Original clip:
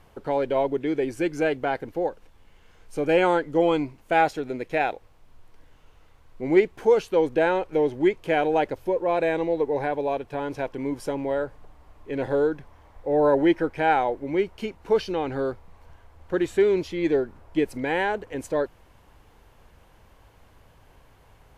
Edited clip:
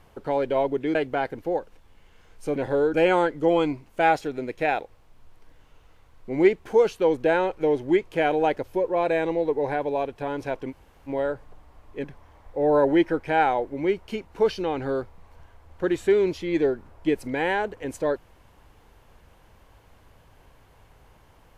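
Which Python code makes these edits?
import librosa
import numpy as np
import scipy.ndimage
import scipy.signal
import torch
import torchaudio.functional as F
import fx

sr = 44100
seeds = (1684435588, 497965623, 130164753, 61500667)

y = fx.edit(x, sr, fx.cut(start_s=0.95, length_s=0.5),
    fx.room_tone_fill(start_s=10.83, length_s=0.37, crossfade_s=0.04),
    fx.move(start_s=12.16, length_s=0.38, to_s=3.06), tone=tone)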